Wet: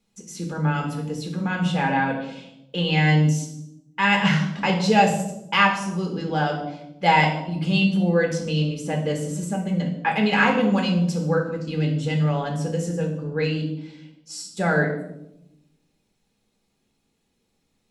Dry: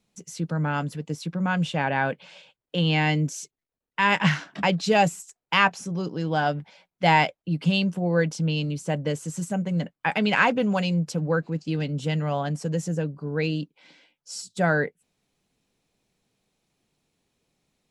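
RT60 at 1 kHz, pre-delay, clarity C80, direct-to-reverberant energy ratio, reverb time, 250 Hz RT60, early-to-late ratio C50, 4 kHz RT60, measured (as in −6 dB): 0.75 s, 3 ms, 10.0 dB, 0.5 dB, 0.85 s, 1.3 s, 7.0 dB, 0.60 s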